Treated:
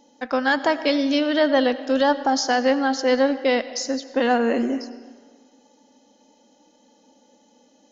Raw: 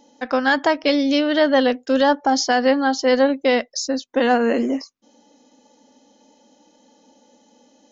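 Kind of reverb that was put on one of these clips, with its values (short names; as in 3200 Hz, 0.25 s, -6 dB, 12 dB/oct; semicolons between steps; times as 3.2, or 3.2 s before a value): digital reverb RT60 1.6 s, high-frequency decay 0.8×, pre-delay 50 ms, DRR 13.5 dB; gain -2.5 dB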